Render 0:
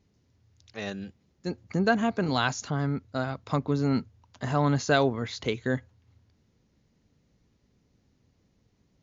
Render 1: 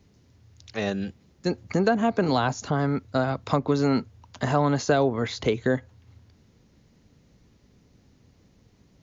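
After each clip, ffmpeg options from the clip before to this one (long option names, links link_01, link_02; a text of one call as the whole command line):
ffmpeg -i in.wav -filter_complex "[0:a]acrossover=split=330|950[link_01][link_02][link_03];[link_01]acompressor=threshold=-36dB:ratio=4[link_04];[link_02]acompressor=threshold=-30dB:ratio=4[link_05];[link_03]acompressor=threshold=-42dB:ratio=4[link_06];[link_04][link_05][link_06]amix=inputs=3:normalize=0,volume=9dB" out.wav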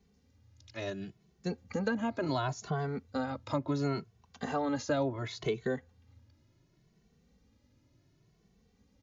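ffmpeg -i in.wav -filter_complex "[0:a]asplit=2[link_01][link_02];[link_02]adelay=2.2,afreqshift=0.7[link_03];[link_01][link_03]amix=inputs=2:normalize=1,volume=-6dB" out.wav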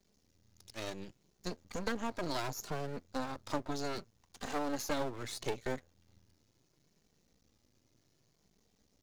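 ffmpeg -i in.wav -af "aeval=exprs='max(val(0),0)':channel_layout=same,bass=frequency=250:gain=-3,treble=frequency=4000:gain=9" out.wav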